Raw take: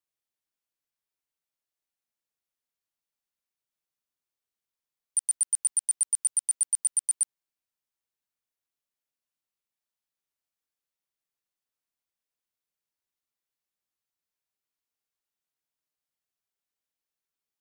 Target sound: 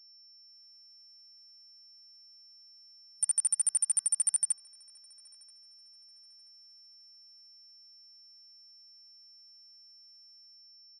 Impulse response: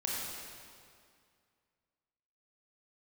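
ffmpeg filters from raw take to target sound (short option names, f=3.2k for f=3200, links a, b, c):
-filter_complex "[0:a]atempo=1.6,afftfilt=real='re*between(b*sr/4096,170,11000)':imag='im*between(b*sr/4096,170,11000)':win_size=4096:overlap=0.75,adynamicequalizer=threshold=0.00224:dfrequency=1500:dqfactor=0.85:tfrequency=1500:tqfactor=0.85:attack=5:release=100:ratio=0.375:range=2.5:mode=boostabove:tftype=bell,alimiter=level_in=5.5dB:limit=-24dB:level=0:latency=1:release=76,volume=-5.5dB,dynaudnorm=f=110:g=9:m=9dB,bandreject=f=382:t=h:w=4,bandreject=f=764:t=h:w=4,bandreject=f=1.146k:t=h:w=4,bandreject=f=1.528k:t=h:w=4,bandreject=f=1.91k:t=h:w=4,aeval=exprs='val(0)+0.002*sin(2*PI*5400*n/s)':c=same,asplit=2[a][b];[b]adelay=982,lowpass=f=2.9k:p=1,volume=-22dB,asplit=2[c][d];[d]adelay=982,lowpass=f=2.9k:p=1,volume=0.5,asplit=2[e][f];[f]adelay=982,lowpass=f=2.9k:p=1,volume=0.5[g];[a][c][e][g]amix=inputs=4:normalize=0"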